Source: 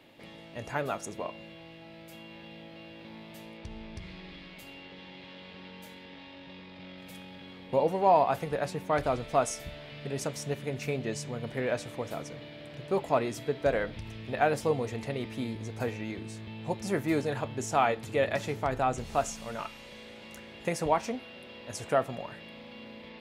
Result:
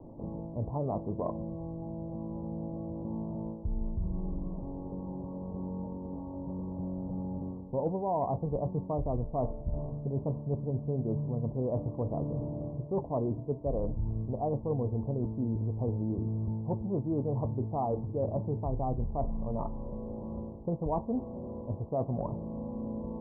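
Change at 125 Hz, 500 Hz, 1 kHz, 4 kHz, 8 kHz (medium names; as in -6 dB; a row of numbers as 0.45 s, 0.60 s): +6.5 dB, -4.0 dB, -7.5 dB, under -40 dB, under -35 dB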